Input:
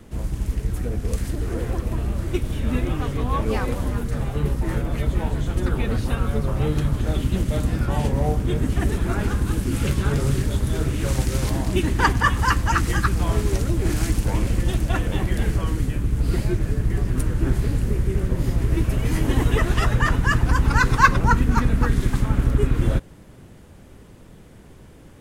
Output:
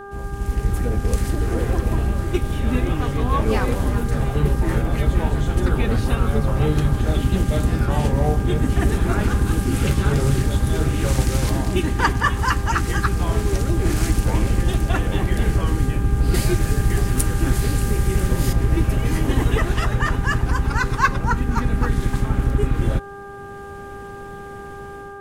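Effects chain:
automatic gain control gain up to 10.5 dB
hum with harmonics 400 Hz, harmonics 4, −32 dBFS −3 dB per octave
0:16.34–0:18.53: high-shelf EQ 2,700 Hz +11.5 dB
level −4.5 dB

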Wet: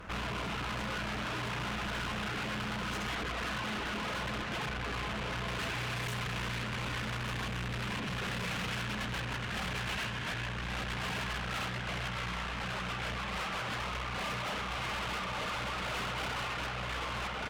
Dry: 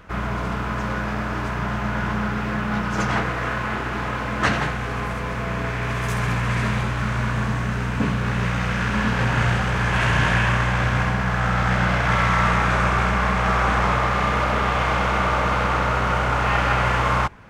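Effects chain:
repeating echo 1,161 ms, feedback 55%, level −9 dB
reverb reduction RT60 0.93 s
compressor whose output falls as the input rises −25 dBFS, ratio −0.5
0:03.21–0:05.47: high-shelf EQ 4,100 Hz −8.5 dB
feedback delay with all-pass diffusion 1,387 ms, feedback 67%, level −13 dB
tube saturation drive 36 dB, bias 0.5
dynamic equaliser 2,900 Hz, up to +6 dB, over −56 dBFS, Q 1.4

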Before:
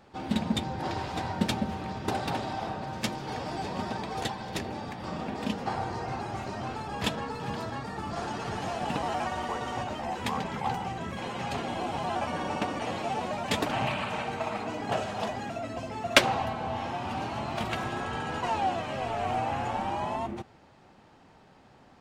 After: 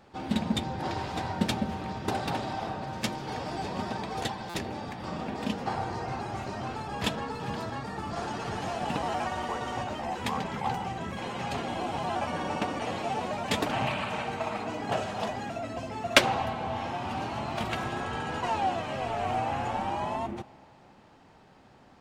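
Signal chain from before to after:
spring reverb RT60 2.9 s, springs 30 ms, chirp 50 ms, DRR 19.5 dB
buffer that repeats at 0:04.49, samples 256, times 8

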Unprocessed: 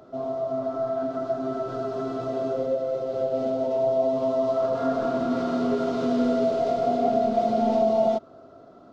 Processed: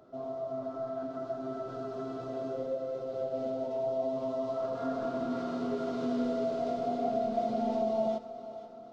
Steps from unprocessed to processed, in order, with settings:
echo with a time of its own for lows and highs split 310 Hz, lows 371 ms, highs 484 ms, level −13.5 dB
level −8.5 dB

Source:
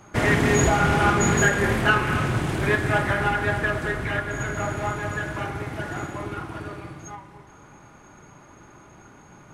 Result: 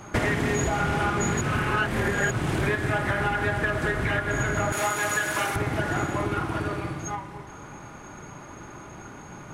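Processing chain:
0:01.41–0:02.31: reverse
0:04.72–0:05.56: RIAA equalisation recording
downward compressor 10 to 1, threshold −28 dBFS, peak gain reduction 14.5 dB
level +6.5 dB

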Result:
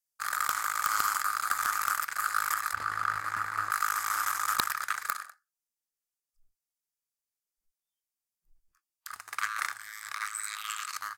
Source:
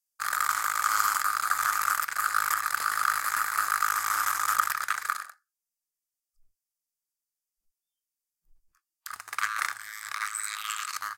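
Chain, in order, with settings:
0:02.73–0:03.71: RIAA equalisation playback
wrap-around overflow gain 10 dB
level −3 dB

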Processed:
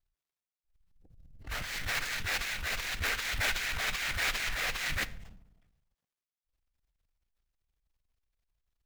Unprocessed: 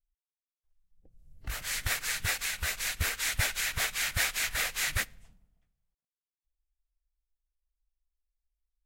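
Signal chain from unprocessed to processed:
running median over 5 samples
transient designer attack −8 dB, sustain +10 dB

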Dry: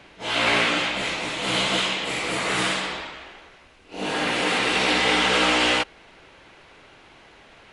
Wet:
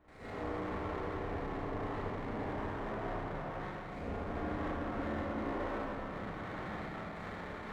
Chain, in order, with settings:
noise gate with hold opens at −40 dBFS
frequency shifter −220 Hz
flat-topped bell 3,500 Hz −13.5 dB 1 octave
reversed playback
downward compressor 5 to 1, threshold −45 dBFS, peak gain reduction 23.5 dB
reversed playback
treble cut that deepens with the level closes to 950 Hz, closed at −45 dBFS
gate pattern ".xxxxxx.xxxxx" 187 BPM
on a send: backwards echo 813 ms −20 dB
on the sum: four-comb reverb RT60 3 s, combs from 29 ms, DRR −9.5 dB
windowed peak hold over 5 samples
level +1 dB

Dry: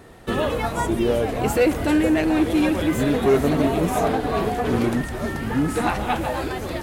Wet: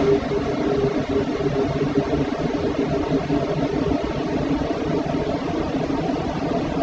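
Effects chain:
variable-slope delta modulation 32 kbit/s
extreme stretch with random phases 18×, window 1.00 s, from 0:03.40
reverb reduction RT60 0.95 s

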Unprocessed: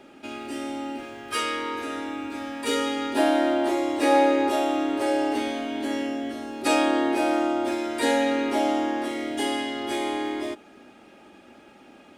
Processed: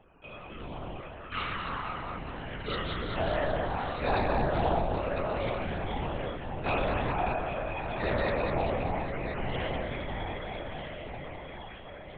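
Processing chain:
0:08.87–0:09.54: linear delta modulator 16 kbit/s, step −30.5 dBFS
low-shelf EQ 390 Hz −11 dB
on a send: feedback delay with all-pass diffusion 1,200 ms, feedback 50%, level −6.5 dB
on the sum: spectral peaks only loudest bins 32
delay that swaps between a low-pass and a high-pass 101 ms, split 810 Hz, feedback 81%, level −4 dB
linear-prediction vocoder at 8 kHz whisper
highs frequency-modulated by the lows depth 0.22 ms
level −5 dB

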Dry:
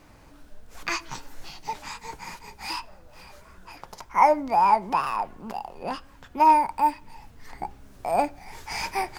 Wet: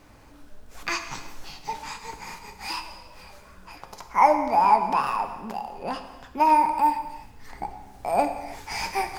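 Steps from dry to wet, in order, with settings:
reverb whose tail is shaped and stops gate 420 ms falling, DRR 6.5 dB

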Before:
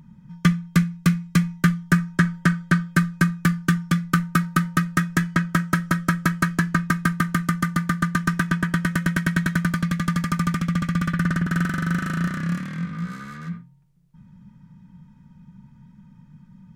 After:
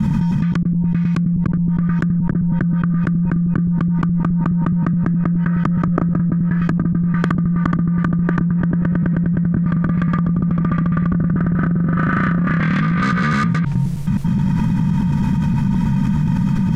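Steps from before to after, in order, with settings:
slices reordered back to front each 105 ms, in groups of 2
dynamic equaliser 180 Hz, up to −4 dB, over −30 dBFS, Q 1.1
treble cut that deepens with the level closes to 320 Hz, closed at −20 dBFS
envelope flattener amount 100%

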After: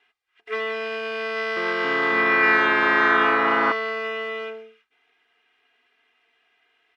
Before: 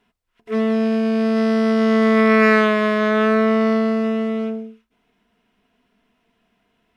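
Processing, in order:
downward compressor 3 to 1, threshold −17 dBFS, peak gain reduction 6.5 dB
resonant band-pass 2,100 Hz, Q 1.1
comb filter 2.5 ms, depth 88%
0:01.29–0:03.72: delay with pitch and tempo change per echo 275 ms, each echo −4 semitones, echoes 3
level +4.5 dB

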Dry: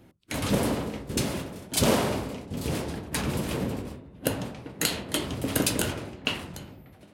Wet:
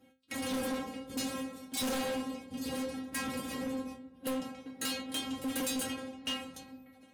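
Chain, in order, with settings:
high-pass filter 56 Hz
mains-hum notches 60/120 Hz
stiff-string resonator 260 Hz, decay 0.31 s, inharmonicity 0.002
hard clipping −39.5 dBFS, distortion −8 dB
level +8.5 dB

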